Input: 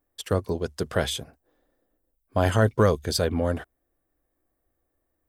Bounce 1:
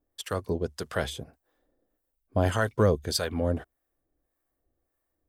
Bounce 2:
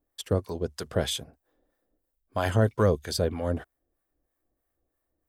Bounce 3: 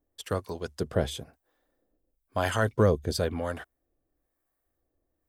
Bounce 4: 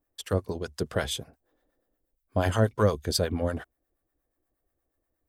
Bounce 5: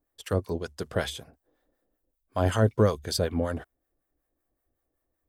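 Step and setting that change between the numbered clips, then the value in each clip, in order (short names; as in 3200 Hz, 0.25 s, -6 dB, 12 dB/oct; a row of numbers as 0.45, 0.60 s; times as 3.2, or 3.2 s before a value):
harmonic tremolo, rate: 1.7, 3.1, 1, 8.4, 5.3 Hz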